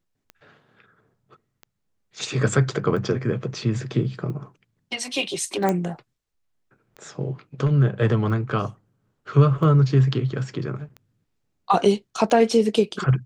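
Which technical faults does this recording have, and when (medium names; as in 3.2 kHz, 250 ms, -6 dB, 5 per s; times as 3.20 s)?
tick 45 rpm -25 dBFS
5.69 s: pop -10 dBFS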